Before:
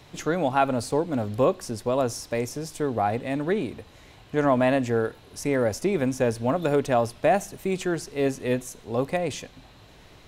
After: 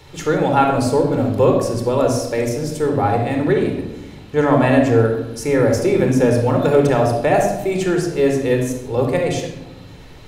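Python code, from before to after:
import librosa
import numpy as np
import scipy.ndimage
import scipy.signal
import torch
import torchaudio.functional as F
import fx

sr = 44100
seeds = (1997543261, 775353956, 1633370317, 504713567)

y = fx.room_shoebox(x, sr, seeds[0], volume_m3=4000.0, walls='furnished', distance_m=4.3)
y = y * 10.0 ** (3.5 / 20.0)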